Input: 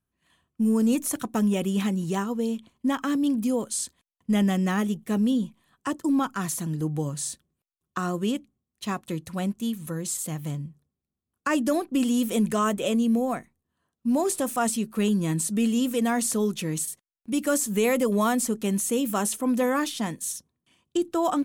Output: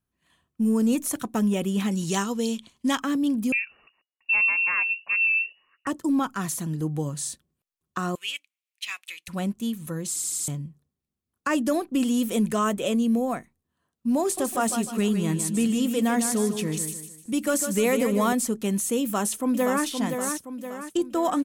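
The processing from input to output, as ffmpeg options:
ffmpeg -i in.wav -filter_complex "[0:a]asettb=1/sr,asplit=3[link_01][link_02][link_03];[link_01]atrim=end=1.914[link_04];[link_02]atrim=start=1.91:end=3,asetpts=PTS-STARTPTS,afade=type=in:duration=0.004:curve=qsin,afade=type=out:start_time=1.086:duration=0.004:curve=qsin,equalizer=frequency=5500:width=0.46:gain=12.5[link_05];[link_03]atrim=start=2.996[link_06];[link_04][link_05]acrossfade=duration=0.004:curve1=hsin:curve2=qsin[link_07];[link_07][link_06]acrossfade=duration=0.004:curve1=qsin:curve2=hsin,asettb=1/sr,asplit=3[link_08][link_09][link_10];[link_08]atrim=end=3.524[link_11];[link_09]atrim=start=3.52:end=5.87,asetpts=PTS-STARTPTS,afade=type=in:duration=0.004:curve=qsin,afade=type=out:start_time=2.346:duration=0.004:curve=qsin,lowpass=frequency=2500:width_type=q:width=0.5098,lowpass=frequency=2500:width_type=q:width=0.6013,lowpass=frequency=2500:width_type=q:width=0.9,lowpass=frequency=2500:width_type=q:width=2.563,afreqshift=-2900[link_12];[link_10]atrim=start=5.866[link_13];[link_11][link_12]acrossfade=duration=0.004:curve1=hsin:curve2=qsin[link_14];[link_14][link_13]acrossfade=duration=0.004:curve1=qsin:curve2=hsin,asettb=1/sr,asplit=3[link_15][link_16][link_17];[link_15]atrim=end=8.154[link_18];[link_16]atrim=start=8.15:end=9.28,asetpts=PTS-STARTPTS,afade=type=in:duration=0.004:curve=qsin,afade=type=out:start_time=1.126:duration=0.004:curve=qsin,highpass=frequency=2400:width_type=q:width=4.2[link_19];[link_17]atrim=start=9.276[link_20];[link_18][link_19]acrossfade=duration=0.004:curve1=hsin:curve2=qsin[link_21];[link_21][link_20]acrossfade=duration=0.004:curve1=qsin:curve2=hsin,asettb=1/sr,asplit=3[link_22][link_23][link_24];[link_22]atrim=end=14.224[link_25];[link_23]atrim=start=14.22:end=18.33,asetpts=PTS-STARTPTS,afade=type=in:duration=0.004:curve=qsin,afade=type=out:start_time=4.106:duration=0.004:curve=qsin,aecho=1:1:152|304|456|608:0.398|0.147|0.0545|0.0202,atrim=end_sample=181251[link_26];[link_24]atrim=start=18.326[link_27];[link_25][link_26]acrossfade=duration=0.004:curve1=hsin:curve2=qsin[link_28];[link_28][link_27]acrossfade=duration=0.004:curve1=qsin:curve2=hsin,asplit=2[link_29][link_30];[link_30]afade=type=in:start_time=19.02:duration=0.01,afade=type=out:start_time=19.85:duration=0.01,aecho=0:1:520|1040|1560|2080|2600|3120:0.501187|0.250594|0.125297|0.0626484|0.0313242|0.0156621[link_31];[link_29][link_31]amix=inputs=2:normalize=0,asplit=6[link_32][link_33][link_34][link_35][link_36][link_37];[link_32]atrim=end=10.162[link_38];[link_33]atrim=start=10.078:end=10.162[link_39];[link_34]atrim=start=10.078:end=10.162[link_40];[link_35]atrim=start=10.078:end=10.162[link_41];[link_36]atrim=start=10.078:end=10.162[link_42];[link_37]atrim=start=10.478[link_43];[link_38][link_39]acrossfade=duration=0.004:curve1=hsin:curve2=hsin[link_44];[link_44][link_40]acrossfade=duration=0.004:curve1=hsin:curve2=hsin[link_45];[link_45][link_41]acrossfade=duration=0.004:curve1=hsin:curve2=hsin[link_46];[link_46][link_42]acrossfade=duration=0.004:curve1=hsin:curve2=hsin[link_47];[link_47][link_43]acrossfade=duration=0.004:curve1=hsin:curve2=hsin" out.wav

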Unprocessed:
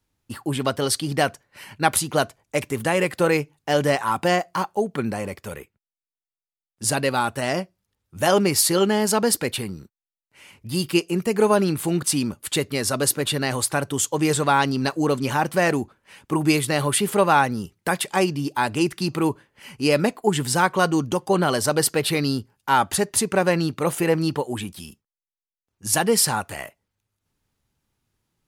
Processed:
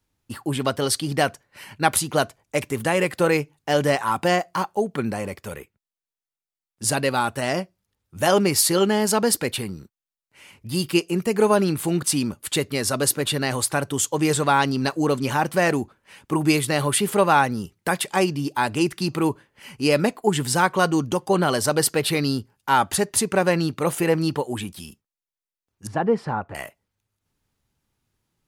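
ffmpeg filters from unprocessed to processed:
ffmpeg -i in.wav -filter_complex "[0:a]asettb=1/sr,asplit=3[link_01][link_02][link_03];[link_01]atrim=end=25.874[link_04];[link_02]atrim=start=25.87:end=26.55,asetpts=PTS-STARTPTS,afade=type=in:duration=0.004:curve=qsin,afade=type=out:start_time=0.676:duration=0.004:curve=qsin,lowpass=1200[link_05];[link_03]atrim=start=26.546[link_06];[link_04][link_05]acrossfade=duration=0.004:curve1=hsin:curve2=qsin[link_07];[link_07][link_06]acrossfade=duration=0.004:curve1=qsin:curve2=hsin" out.wav

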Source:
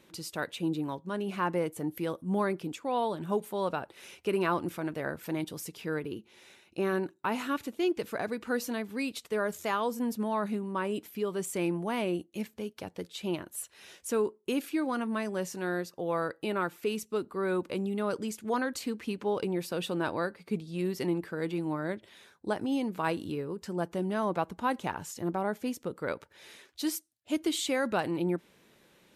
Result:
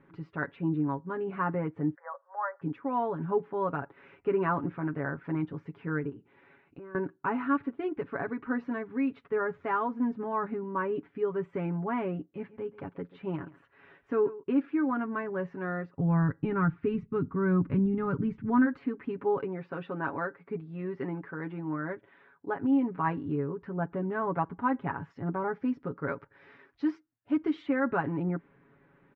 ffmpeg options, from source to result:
ffmpeg -i in.wav -filter_complex "[0:a]asplit=3[link_01][link_02][link_03];[link_01]afade=type=out:start_time=1.94:duration=0.02[link_04];[link_02]asuperpass=centerf=1000:order=20:qfactor=0.71,afade=type=in:start_time=1.94:duration=0.02,afade=type=out:start_time=2.61:duration=0.02[link_05];[link_03]afade=type=in:start_time=2.61:duration=0.02[link_06];[link_04][link_05][link_06]amix=inputs=3:normalize=0,asettb=1/sr,asplit=3[link_07][link_08][link_09];[link_07]atrim=end=6.094[link_10];[link_08]atrim=start=6.09:end=6.95,asetpts=PTS-STARTPTS,afade=type=in:duration=0.004:curve=qsin,afade=type=out:start_time=0.856:duration=0.004:curve=qsin,acompressor=threshold=-44dB:ratio=5:attack=3.2:release=140:knee=1:detection=peak[link_11];[link_09]atrim=start=6.946[link_12];[link_10][link_11]acrossfade=duration=0.004:curve1=hsin:curve2=qsin[link_13];[link_13][link_12]acrossfade=duration=0.004:curve1=qsin:curve2=hsin,asettb=1/sr,asplit=3[link_14][link_15][link_16];[link_14]atrim=end=12.294[link_17];[link_15]atrim=start=12.29:end=14.43,asetpts=PTS-STARTPTS,afade=type=in:duration=0.004:curve=qsin,afade=type=out:start_time=2.136:duration=0.004:curve=qsin,aecho=1:1:135:0.126,atrim=end_sample=94374[link_18];[link_16]atrim=start=14.426[link_19];[link_17][link_18]acrossfade=duration=0.004:curve1=hsin:curve2=qsin[link_20];[link_20][link_19]acrossfade=duration=0.004:curve1=qsin:curve2=hsin,asplit=3[link_21][link_22][link_23];[link_21]afade=type=out:start_time=15.97:duration=0.02[link_24];[link_22]asubboost=boost=10:cutoff=160,afade=type=in:start_time=15.97:duration=0.02,afade=type=out:start_time=18.65:duration=0.02[link_25];[link_23]afade=type=in:start_time=18.65:duration=0.02[link_26];[link_24][link_25][link_26]amix=inputs=3:normalize=0,asettb=1/sr,asplit=3[link_27][link_28][link_29];[link_27]atrim=end=19.374[link_30];[link_28]atrim=start=19.37:end=22.63,asetpts=PTS-STARTPTS,afade=type=in:duration=0.004:curve=qsin,afade=type=out:start_time=3.256:duration=0.004:curve=qsin,lowshelf=frequency=200:gain=-10[link_31];[link_29]atrim=start=22.626[link_32];[link_30][link_31]acrossfade=duration=0.004:curve1=hsin:curve2=qsin[link_33];[link_33][link_32]acrossfade=duration=0.004:curve1=qsin:curve2=hsin,asettb=1/sr,asplit=3[link_34][link_35][link_36];[link_34]atrim=end=25.104[link_37];[link_35]atrim=start=25.1:end=27.62,asetpts=PTS-STARTPTS,afade=type=in:duration=0.004:curve=qsin,afade=type=out:start_time=2.516:duration=0.004:curve=qsin,equalizer=frequency=5400:width=2.2:gain=12.5[link_38];[link_36]atrim=start=27.616[link_39];[link_37][link_38]acrossfade=duration=0.004:curve1=hsin:curve2=qsin[link_40];[link_40][link_39]acrossfade=duration=0.004:curve1=qsin:curve2=hsin,lowpass=frequency=1700:width=0.5412,lowpass=frequency=1700:width=1.3066,equalizer=frequency=600:width_type=o:width=1.1:gain=-7.5,aecho=1:1:7.2:0.75,volume=2.5dB" out.wav

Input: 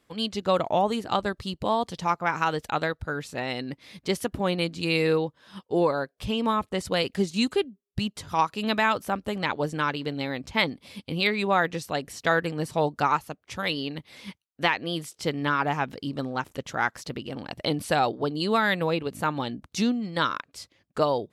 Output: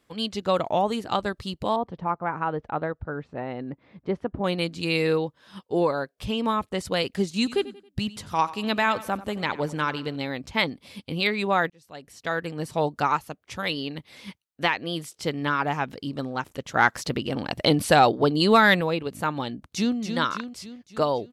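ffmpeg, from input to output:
ffmpeg -i in.wav -filter_complex "[0:a]asettb=1/sr,asplit=3[link_01][link_02][link_03];[link_01]atrim=end=1.764[link_04];[link_02]atrim=start=1.76:end=4.44,asetpts=PTS-STARTPTS,afade=type=in:duration=0.004:curve=qsin,afade=type=out:start_time=2.676:duration=0.004:curve=qsin,lowpass=1200[link_05];[link_03]atrim=start=4.436[link_06];[link_04][link_05]acrossfade=duration=0.004:curve1=hsin:curve2=qsin[link_07];[link_07][link_06]acrossfade=duration=0.004:curve1=qsin:curve2=hsin,asettb=1/sr,asplit=3[link_08][link_09][link_10];[link_08]atrim=end=7.314[link_11];[link_09]atrim=start=7.31:end=10.16,asetpts=PTS-STARTPTS,afade=type=in:duration=0.004:curve=qsin,afade=type=out:start_time=2.846:duration=0.004:curve=qsin,aecho=1:1:91|182|273:0.141|0.0565|0.0226,atrim=end_sample=125685[link_12];[link_10]atrim=start=10.156[link_13];[link_11][link_12]acrossfade=duration=0.004:curve1=hsin:curve2=qsin[link_14];[link_14][link_13]acrossfade=duration=0.004:curve1=qsin:curve2=hsin,asettb=1/sr,asplit=3[link_15][link_16][link_17];[link_15]atrim=end=16.754[link_18];[link_16]atrim=start=16.75:end=18.81,asetpts=PTS-STARTPTS,afade=type=in:duration=0.004:curve=qsin,afade=type=out:start_time=2.056:duration=0.004:curve=qsin,acontrast=74[link_19];[link_17]atrim=start=18.806[link_20];[link_18][link_19]acrossfade=duration=0.004:curve1=hsin:curve2=qsin[link_21];[link_21][link_20]acrossfade=duration=0.004:curve1=qsin:curve2=hsin,asplit=2[link_22][link_23];[link_23]afade=type=in:start_time=19.54:duration=0.01,afade=type=out:start_time=19.97:duration=0.01,aecho=0:1:280|560|840|1120|1400|1680|1960:0.446684|0.245676|0.135122|0.074317|0.0408743|0.0224809|0.0123645[link_24];[link_22][link_24]amix=inputs=2:normalize=0,asplit=2[link_25][link_26];[link_25]atrim=end=11.7,asetpts=PTS-STARTPTS,afade=type=out:start_time=11.696:duration=0.004:curve=hsin[link_27];[link_26]atrim=start=11.7,asetpts=PTS-STARTPTS,afade=type=in:duration=1.11[link_28];[link_27][link_28]concat=n=2:v=0:a=1" out.wav

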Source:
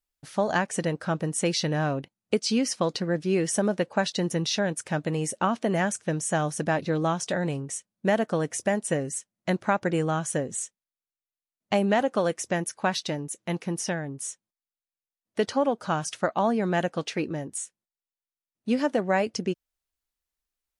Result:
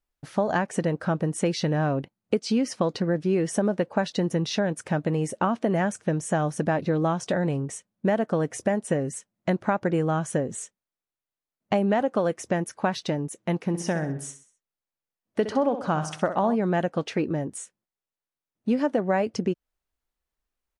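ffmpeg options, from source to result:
ffmpeg -i in.wav -filter_complex "[0:a]asplit=3[link_01][link_02][link_03];[link_01]afade=type=out:start_time=13.68:duration=0.02[link_04];[link_02]aecho=1:1:64|128|192|256:0.266|0.117|0.0515|0.0227,afade=type=in:start_time=13.68:duration=0.02,afade=type=out:start_time=16.54:duration=0.02[link_05];[link_03]afade=type=in:start_time=16.54:duration=0.02[link_06];[link_04][link_05][link_06]amix=inputs=3:normalize=0,highshelf=frequency=2400:gain=-11.5,acompressor=threshold=-30dB:ratio=2,volume=6.5dB" out.wav

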